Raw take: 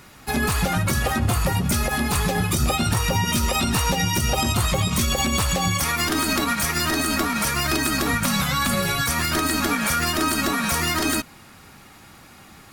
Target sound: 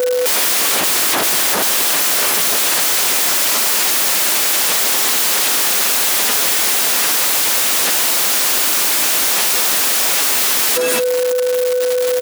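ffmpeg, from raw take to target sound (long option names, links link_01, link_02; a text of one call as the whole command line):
ffmpeg -i in.wav -filter_complex "[0:a]aemphasis=mode=production:type=cd,acrusher=bits=5:mix=0:aa=0.000001,asetrate=45938,aresample=44100,aecho=1:1:4.9:0.98,asplit=2[link_01][link_02];[link_02]adelay=227.4,volume=-19dB,highshelf=frequency=4000:gain=-5.12[link_03];[link_01][link_03]amix=inputs=2:normalize=0,acompressor=threshold=-29dB:ratio=12,aeval=exprs='val(0)+0.00794*sin(2*PI*500*n/s)':channel_layout=same,aeval=exprs='0.0891*sin(PI/2*7.94*val(0)/0.0891)':channel_layout=same,highpass=280,volume=9dB" out.wav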